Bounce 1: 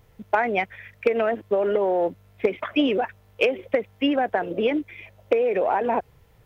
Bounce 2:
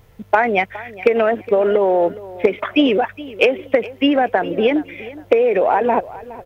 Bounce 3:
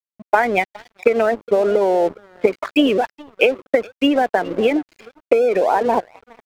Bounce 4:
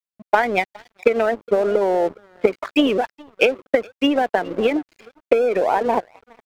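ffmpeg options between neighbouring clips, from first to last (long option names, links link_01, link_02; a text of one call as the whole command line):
ffmpeg -i in.wav -af "aecho=1:1:415|830:0.126|0.034,volume=6.5dB" out.wav
ffmpeg -i in.wav -af "afftdn=noise_reduction=15:noise_floor=-26,aeval=exprs='sgn(val(0))*max(abs(val(0))-0.0224,0)':channel_layout=same" out.wav
ffmpeg -i in.wav -af "aeval=exprs='0.891*(cos(1*acos(clip(val(0)/0.891,-1,1)))-cos(1*PI/2))+0.0562*(cos(3*acos(clip(val(0)/0.891,-1,1)))-cos(3*PI/2))+0.00631*(cos(4*acos(clip(val(0)/0.891,-1,1)))-cos(4*PI/2))+0.0158*(cos(7*acos(clip(val(0)/0.891,-1,1)))-cos(7*PI/2))':channel_layout=same" out.wav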